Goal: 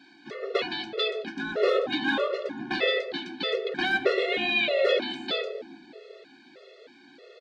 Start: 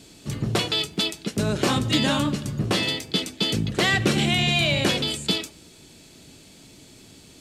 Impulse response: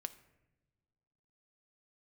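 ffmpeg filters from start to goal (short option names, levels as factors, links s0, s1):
-filter_complex "[0:a]asplit=2[s0][s1];[s1]alimiter=limit=0.141:level=0:latency=1:release=272,volume=0.841[s2];[s0][s2]amix=inputs=2:normalize=0,highpass=f=320:w=0.5412,highpass=f=320:w=1.3066,equalizer=f=330:t=q:w=4:g=-5,equalizer=f=490:t=q:w=4:g=8,equalizer=f=960:t=q:w=4:g=-5,equalizer=f=1600:t=q:w=4:g=7,equalizer=f=3000:t=q:w=4:g=-7,lowpass=f=3600:w=0.5412,lowpass=f=3600:w=1.3066,acrossover=split=750|1400[s3][s4][s5];[s3]aecho=1:1:120|258|416.7|599.2|809.1:0.631|0.398|0.251|0.158|0.1[s6];[s4]asoftclip=type=tanh:threshold=0.0178[s7];[s6][s7][s5]amix=inputs=3:normalize=0[s8];[1:a]atrim=start_sample=2205,asetrate=30429,aresample=44100[s9];[s8][s9]afir=irnorm=-1:irlink=0,afftfilt=real='re*gt(sin(2*PI*1.6*pts/sr)*(1-2*mod(floor(b*sr/1024/360),2)),0)':imag='im*gt(sin(2*PI*1.6*pts/sr)*(1-2*mod(floor(b*sr/1024/360),2)),0)':win_size=1024:overlap=0.75"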